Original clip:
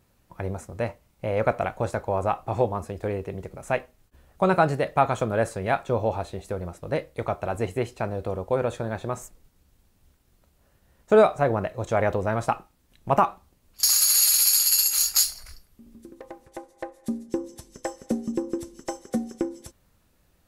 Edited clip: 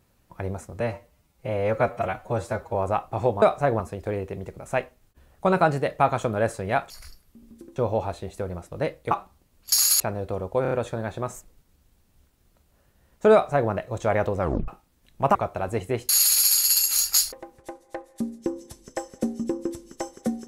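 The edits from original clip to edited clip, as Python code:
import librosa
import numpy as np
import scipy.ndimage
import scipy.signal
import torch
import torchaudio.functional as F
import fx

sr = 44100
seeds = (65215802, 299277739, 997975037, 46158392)

y = fx.edit(x, sr, fx.stretch_span(start_s=0.8, length_s=1.3, factor=1.5),
    fx.swap(start_s=7.22, length_s=0.74, other_s=13.22, other_length_s=0.89),
    fx.stutter(start_s=8.58, slice_s=0.03, count=4),
    fx.duplicate(start_s=11.2, length_s=0.38, to_s=2.77),
    fx.tape_stop(start_s=12.26, length_s=0.29),
    fx.move(start_s=15.34, length_s=0.86, to_s=5.87), tone=tone)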